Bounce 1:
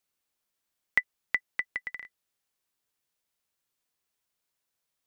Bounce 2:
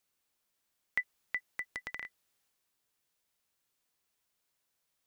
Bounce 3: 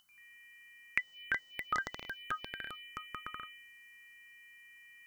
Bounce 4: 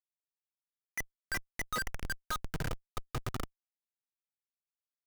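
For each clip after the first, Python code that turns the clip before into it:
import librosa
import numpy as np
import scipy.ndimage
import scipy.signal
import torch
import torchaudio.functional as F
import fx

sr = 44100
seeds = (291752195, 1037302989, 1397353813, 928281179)

y1 = fx.transient(x, sr, attack_db=-11, sustain_db=3)
y1 = F.gain(torch.from_numpy(y1), 2.0).numpy()
y2 = y1 + 10.0 ** (-56.0 / 20.0) * np.sin(2.0 * np.pi * 3000.0 * np.arange(len(y1)) / sr)
y2 = fx.echo_pitch(y2, sr, ms=89, semitones=-4, count=2, db_per_echo=-3.0)
y2 = fx.env_phaser(y2, sr, low_hz=440.0, high_hz=2500.0, full_db=-36.0)
y2 = F.gain(torch.from_numpy(y2), 7.0).numpy()
y3 = fx.schmitt(y2, sr, flips_db=-39.0)
y3 = F.gain(torch.from_numpy(y3), 10.5).numpy()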